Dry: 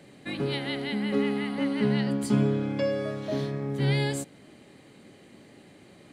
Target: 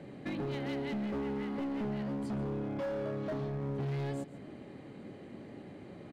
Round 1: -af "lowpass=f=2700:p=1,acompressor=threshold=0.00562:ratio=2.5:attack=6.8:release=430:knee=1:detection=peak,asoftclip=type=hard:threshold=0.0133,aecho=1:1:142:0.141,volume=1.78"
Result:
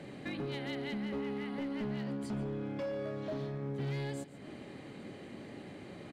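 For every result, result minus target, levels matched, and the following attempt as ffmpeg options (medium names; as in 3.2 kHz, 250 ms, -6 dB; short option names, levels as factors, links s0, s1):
2 kHz band +4.5 dB; compression: peak gain reduction +4 dB
-af "lowpass=f=970:p=1,acompressor=threshold=0.00562:ratio=2.5:attack=6.8:release=430:knee=1:detection=peak,asoftclip=type=hard:threshold=0.0133,aecho=1:1:142:0.141,volume=1.78"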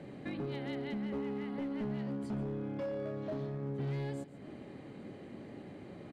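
compression: peak gain reduction +4 dB
-af "lowpass=f=970:p=1,acompressor=threshold=0.0119:ratio=2.5:attack=6.8:release=430:knee=1:detection=peak,asoftclip=type=hard:threshold=0.0133,aecho=1:1:142:0.141,volume=1.78"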